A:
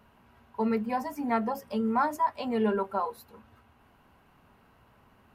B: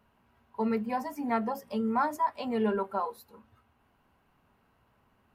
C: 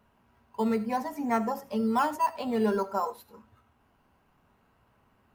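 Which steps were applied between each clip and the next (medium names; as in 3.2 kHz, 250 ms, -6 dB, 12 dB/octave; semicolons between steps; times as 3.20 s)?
spectral noise reduction 6 dB; trim -1.5 dB
in parallel at -11.5 dB: decimation with a swept rate 9×, swing 60% 0.55 Hz; on the sum: reverberation, pre-delay 30 ms, DRR 15.5 dB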